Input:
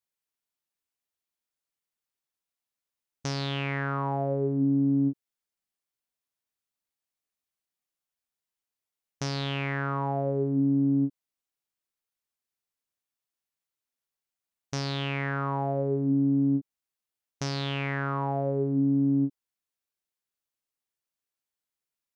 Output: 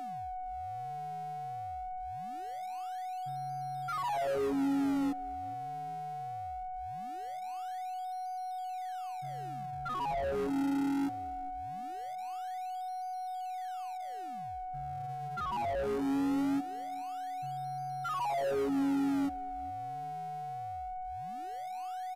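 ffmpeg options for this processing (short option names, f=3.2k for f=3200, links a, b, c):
-filter_complex "[0:a]highpass=f=140:w=0.5412,highpass=f=140:w=1.3066,afftfilt=real='re*gte(hypot(re,im),0.178)':imag='im*gte(hypot(re,im),0.178)':win_size=1024:overlap=0.75,acrossover=split=200 3400:gain=0.224 1 0.178[a][b][c];[a][b][c]amix=inputs=3:normalize=0,acrossover=split=280[d][e];[e]acompressor=threshold=-31dB:ratio=6[f];[d][f]amix=inputs=2:normalize=0,aeval=exprs='val(0)+0.00447*sin(2*PI*740*n/s)':c=same,asplit=2[g][h];[h]highpass=f=720:p=1,volume=26dB,asoftclip=type=tanh:threshold=-21dB[i];[g][i]amix=inputs=2:normalize=0,lowpass=f=1.4k:p=1,volume=-6dB,asplit=2[j][k];[k]acrusher=samples=42:mix=1:aa=0.000001:lfo=1:lforange=67.2:lforate=0.21,volume=-11.5dB[l];[j][l]amix=inputs=2:normalize=0,aeval=exprs='0.112*(cos(1*acos(clip(val(0)/0.112,-1,1)))-cos(1*PI/2))+0.00112*(cos(8*acos(clip(val(0)/0.112,-1,1)))-cos(8*PI/2))':c=same,asplit=2[m][n];[n]aecho=0:1:414|828:0.0841|0.0269[o];[m][o]amix=inputs=2:normalize=0,aresample=32000,aresample=44100,volume=-5.5dB"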